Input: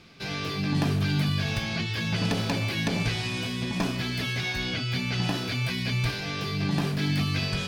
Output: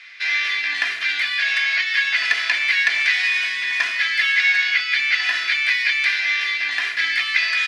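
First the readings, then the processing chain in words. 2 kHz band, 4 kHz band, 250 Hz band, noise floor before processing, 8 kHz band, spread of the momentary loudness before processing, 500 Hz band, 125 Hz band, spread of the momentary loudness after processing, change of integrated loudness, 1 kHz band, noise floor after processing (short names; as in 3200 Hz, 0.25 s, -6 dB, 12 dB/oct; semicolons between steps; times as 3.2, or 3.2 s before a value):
+16.5 dB, +8.5 dB, under -25 dB, -33 dBFS, +3.5 dB, 4 LU, under -10 dB, under -40 dB, 4 LU, +9.5 dB, +1.5 dB, -26 dBFS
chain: resonant high-pass 1900 Hz, resonance Q 6.1; air absorption 72 m; comb 2.9 ms, depth 43%; gain +7.5 dB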